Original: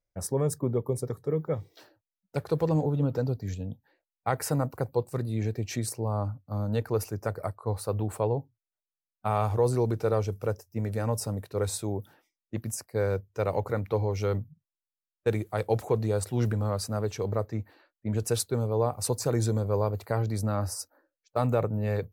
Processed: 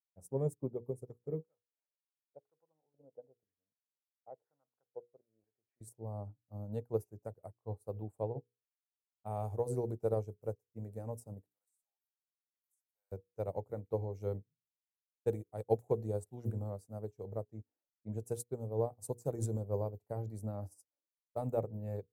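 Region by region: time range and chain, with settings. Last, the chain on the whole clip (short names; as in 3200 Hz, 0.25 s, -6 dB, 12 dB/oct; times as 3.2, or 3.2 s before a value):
1.44–5.81 LFO band-pass square 1 Hz 580–1500 Hz + air absorption 190 m
11.46–13.12 HPF 730 Hz 24 dB/oct + de-esser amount 95% + differentiator
whole clip: band shelf 2400 Hz -14 dB 2.6 oct; notches 60/120/180/240/300/360/420/480 Hz; upward expander 2.5:1, over -44 dBFS; gain -2 dB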